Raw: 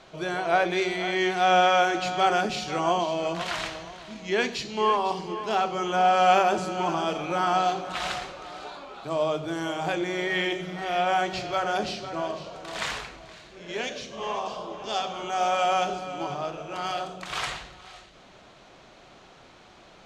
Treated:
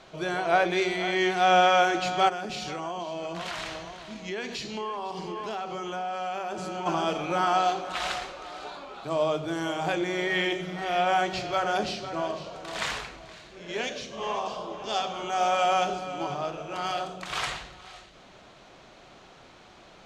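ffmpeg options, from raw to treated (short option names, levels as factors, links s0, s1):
-filter_complex "[0:a]asplit=3[s0][s1][s2];[s0]afade=t=out:st=2.28:d=0.02[s3];[s1]acompressor=threshold=0.0316:ratio=6:attack=3.2:release=140:knee=1:detection=peak,afade=t=in:st=2.28:d=0.02,afade=t=out:st=6.85:d=0.02[s4];[s2]afade=t=in:st=6.85:d=0.02[s5];[s3][s4][s5]amix=inputs=3:normalize=0,asettb=1/sr,asplit=3[s6][s7][s8];[s6]atrim=end=7.454[s9];[s7]atrim=start=7.45:end=8.63,asetpts=PTS-STARTPTS,afade=t=in:d=0.004:c=qsin,afade=t=out:st=1.176:d=0.004:c=qsin,equalizer=f=140:w=1.1:g=-7[s10];[s8]atrim=start=8.626[s11];[s9][s10]acrossfade=d=0.004:c1=hsin:c2=qsin[s12];[s12][s11]acrossfade=d=0.004:c1=qsin:c2=hsin"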